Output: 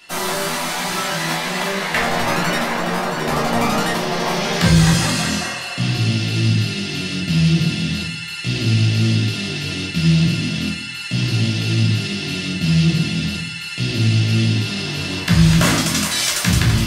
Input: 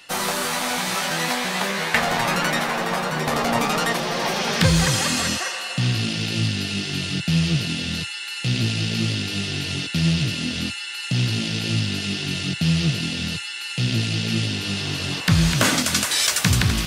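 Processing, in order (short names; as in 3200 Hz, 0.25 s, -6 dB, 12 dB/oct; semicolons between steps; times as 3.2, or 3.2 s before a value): shoebox room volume 430 m³, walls furnished, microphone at 3 m; gain -2.5 dB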